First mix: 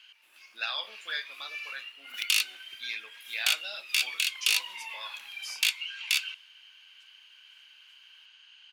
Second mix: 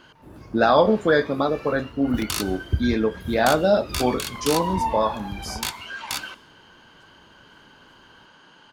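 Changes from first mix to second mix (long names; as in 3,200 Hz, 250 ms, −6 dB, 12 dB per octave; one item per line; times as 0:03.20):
speech +7.0 dB
second sound: send +10.0 dB
master: remove high-pass with resonance 2,600 Hz, resonance Q 4.2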